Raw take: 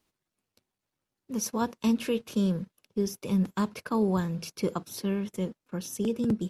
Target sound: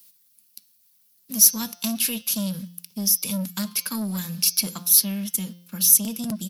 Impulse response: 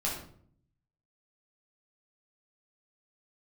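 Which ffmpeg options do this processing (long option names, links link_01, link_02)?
-filter_complex "[0:a]bandreject=frequency=175:width_type=h:width=4,bandreject=frequency=350:width_type=h:width=4,bandreject=frequency=525:width_type=h:width=4,bandreject=frequency=700:width_type=h:width=4,bandreject=frequency=875:width_type=h:width=4,bandreject=frequency=1050:width_type=h:width=4,bandreject=frequency=1225:width_type=h:width=4,bandreject=frequency=1400:width_type=h:width=4,bandreject=frequency=1575:width_type=h:width=4,bandreject=frequency=1750:width_type=h:width=4,bandreject=frequency=1925:width_type=h:width=4,bandreject=frequency=2100:width_type=h:width=4,bandreject=frequency=2275:width_type=h:width=4,bandreject=frequency=2450:width_type=h:width=4,bandreject=frequency=2625:width_type=h:width=4,bandreject=frequency=2800:width_type=h:width=4,bandreject=frequency=2975:width_type=h:width=4,bandreject=frequency=3150:width_type=h:width=4,bandreject=frequency=3325:width_type=h:width=4,bandreject=frequency=3500:width_type=h:width=4,bandreject=frequency=3675:width_type=h:width=4,bandreject=frequency=3850:width_type=h:width=4,bandreject=frequency=4025:width_type=h:width=4,bandreject=frequency=4200:width_type=h:width=4,bandreject=frequency=4375:width_type=h:width=4,bandreject=frequency=4550:width_type=h:width=4,bandreject=frequency=4725:width_type=h:width=4,bandreject=frequency=4900:width_type=h:width=4,bandreject=frequency=5075:width_type=h:width=4,bandreject=frequency=5250:width_type=h:width=4,bandreject=frequency=5425:width_type=h:width=4,bandreject=frequency=5600:width_type=h:width=4,bandreject=frequency=5775:width_type=h:width=4,bandreject=frequency=5950:width_type=h:width=4,bandreject=frequency=6125:width_type=h:width=4,bandreject=frequency=6300:width_type=h:width=4,asplit=2[link_01][link_02];[link_02]acompressor=threshold=-36dB:ratio=6,volume=0dB[link_03];[link_01][link_03]amix=inputs=2:normalize=0,firequalizer=gain_entry='entry(130,0);entry(200,13);entry(330,-5);entry(700,-1);entry(4700,9);entry(7200,4);entry(12000,13)':delay=0.05:min_phase=1,asoftclip=type=tanh:threshold=-13.5dB,crystalizer=i=10:c=0,volume=-10.5dB"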